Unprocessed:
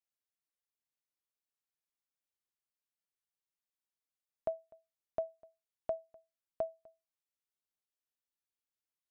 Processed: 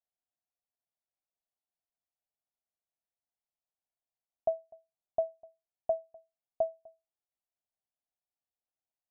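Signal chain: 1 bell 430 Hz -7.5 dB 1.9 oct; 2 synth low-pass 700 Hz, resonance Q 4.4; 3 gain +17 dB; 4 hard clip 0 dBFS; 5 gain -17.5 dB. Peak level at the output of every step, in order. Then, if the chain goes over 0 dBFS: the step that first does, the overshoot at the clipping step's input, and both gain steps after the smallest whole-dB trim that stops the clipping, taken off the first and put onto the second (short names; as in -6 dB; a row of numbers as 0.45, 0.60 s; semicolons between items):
-28.5, -19.0, -2.0, -2.0, -19.5 dBFS; no overload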